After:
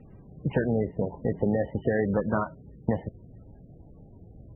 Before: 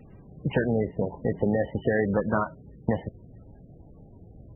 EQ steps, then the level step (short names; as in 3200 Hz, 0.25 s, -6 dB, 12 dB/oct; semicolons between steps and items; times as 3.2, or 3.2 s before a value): air absorption 460 m; 0.0 dB